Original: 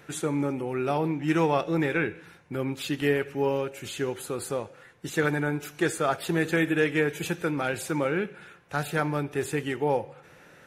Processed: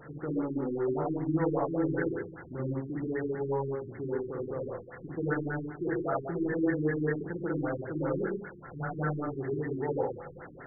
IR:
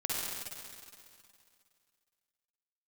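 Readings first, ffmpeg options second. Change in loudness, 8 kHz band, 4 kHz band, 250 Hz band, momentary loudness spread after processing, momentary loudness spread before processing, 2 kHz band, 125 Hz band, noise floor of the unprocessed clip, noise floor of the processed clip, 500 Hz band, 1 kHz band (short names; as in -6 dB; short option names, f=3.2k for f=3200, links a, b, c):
-5.0 dB, under -40 dB, under -40 dB, -3.0 dB, 9 LU, 9 LU, -10.0 dB, -3.0 dB, -54 dBFS, -48 dBFS, -4.0 dB, -7.0 dB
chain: -filter_complex "[0:a]aeval=exprs='val(0)+0.5*0.0178*sgn(val(0))':c=same[a];[1:a]atrim=start_sample=2205,afade=t=out:st=0.23:d=0.01,atrim=end_sample=10584[b];[a][b]afir=irnorm=-1:irlink=0,afftfilt=real='re*lt(b*sr/1024,390*pow(2200/390,0.5+0.5*sin(2*PI*5.1*pts/sr)))':imag='im*lt(b*sr/1024,390*pow(2200/390,0.5+0.5*sin(2*PI*5.1*pts/sr)))':win_size=1024:overlap=0.75,volume=-8.5dB"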